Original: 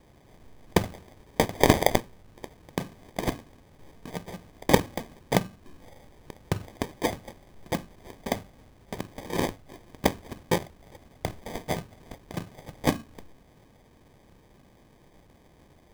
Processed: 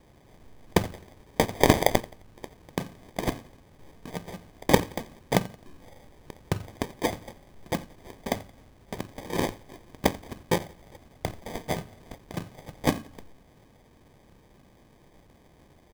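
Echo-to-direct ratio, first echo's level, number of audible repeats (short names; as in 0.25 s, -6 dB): -20.0 dB, -21.0 dB, 2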